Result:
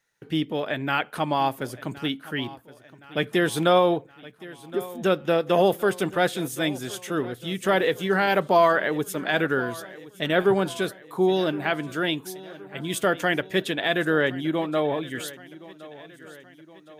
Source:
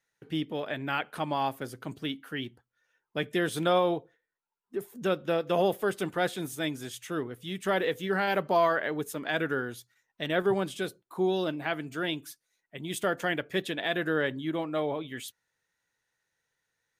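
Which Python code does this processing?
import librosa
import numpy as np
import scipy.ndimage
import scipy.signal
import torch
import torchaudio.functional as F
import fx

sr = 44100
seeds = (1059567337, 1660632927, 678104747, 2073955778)

y = fx.echo_feedback(x, sr, ms=1068, feedback_pct=54, wet_db=-19)
y = F.gain(torch.from_numpy(y), 6.0).numpy()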